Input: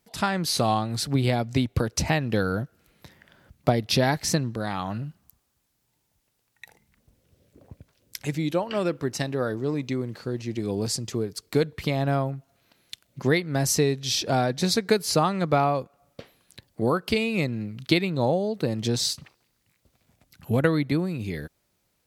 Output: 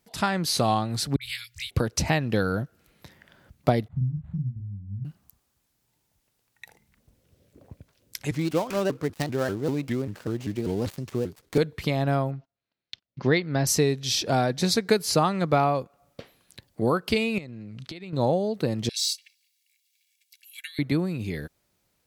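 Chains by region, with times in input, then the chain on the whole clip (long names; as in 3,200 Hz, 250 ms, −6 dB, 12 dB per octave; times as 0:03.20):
0:01.16–0:01.71: inverse Chebyshev band-stop filter 170–720 Hz, stop band 60 dB + high-shelf EQ 9,400 Hz +9 dB + all-pass dispersion highs, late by 56 ms, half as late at 1,300 Hz
0:03.88–0:05.05: inverse Chebyshev band-stop filter 610–7,700 Hz, stop band 70 dB + double-tracking delay 40 ms −2.5 dB + linearly interpolated sample-rate reduction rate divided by 8×
0:08.31–0:11.58: gap after every zero crossing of 0.11 ms + pitch modulation by a square or saw wave saw up 5.1 Hz, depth 250 cents
0:12.31–0:13.67: Butterworth low-pass 5,400 Hz + noise gate −55 dBFS, range −24 dB
0:17.38–0:18.13: low-pass filter 8,400 Hz + downward compressor 12 to 1, threshold −35 dBFS
0:18.89–0:20.79: Butterworth high-pass 2,100 Hz 48 dB per octave + de-essing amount 50% + comb filter 1.8 ms, depth 67%
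whole clip: no processing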